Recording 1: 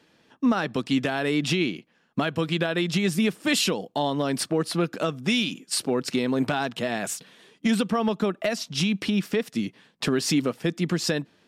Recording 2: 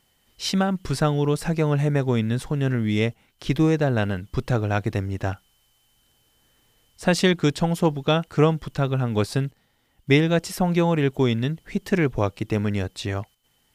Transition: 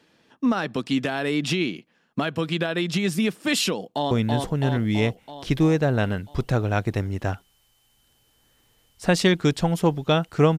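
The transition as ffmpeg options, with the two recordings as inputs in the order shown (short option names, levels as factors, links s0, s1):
-filter_complex "[0:a]apad=whole_dur=10.58,atrim=end=10.58,atrim=end=4.112[s0];[1:a]atrim=start=2.098:end=8.57[s1];[s0][s1]acrossfade=d=0.004:c1=hsin:c2=hsin,asplit=2[s2][s3];[s3]afade=t=in:st=3.77:d=0.01,afade=t=out:st=4.11:d=0.01,aecho=0:1:330|660|990|1320|1650|1980|2310|2640|2970|3300:0.707946|0.460165|0.299107|0.19442|0.126373|0.0821423|0.0533925|0.0347051|0.0225583|0.0146629[s4];[s2][s4]amix=inputs=2:normalize=0"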